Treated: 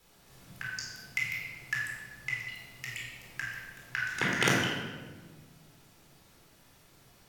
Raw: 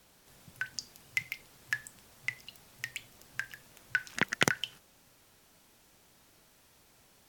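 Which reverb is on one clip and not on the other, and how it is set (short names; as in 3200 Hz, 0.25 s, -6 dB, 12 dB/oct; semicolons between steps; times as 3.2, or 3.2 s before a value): shoebox room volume 1200 m³, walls mixed, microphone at 4.1 m; gain -5 dB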